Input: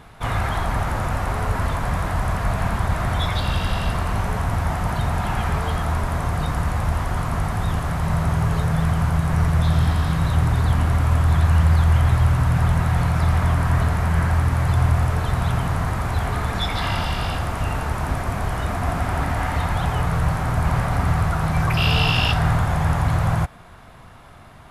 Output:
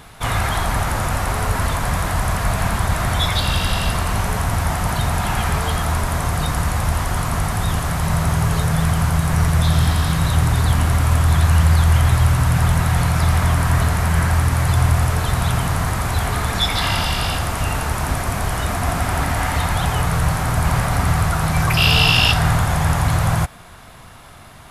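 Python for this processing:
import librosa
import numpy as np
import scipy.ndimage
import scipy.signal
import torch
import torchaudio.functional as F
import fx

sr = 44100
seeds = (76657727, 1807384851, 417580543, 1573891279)

y = fx.high_shelf(x, sr, hz=3300.0, db=11.0)
y = y * 10.0 ** (2.0 / 20.0)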